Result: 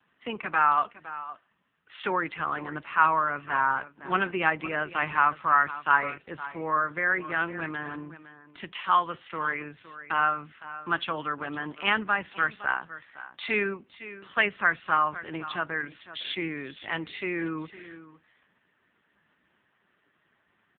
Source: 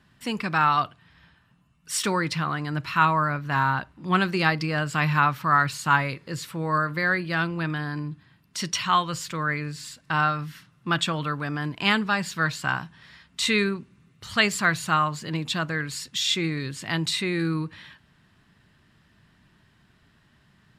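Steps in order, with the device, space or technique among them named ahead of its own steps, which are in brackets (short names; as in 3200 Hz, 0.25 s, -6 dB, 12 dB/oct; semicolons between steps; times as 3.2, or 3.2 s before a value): satellite phone (BPF 340–3000 Hz; echo 0.511 s -15 dB; AMR-NB 5.9 kbps 8000 Hz)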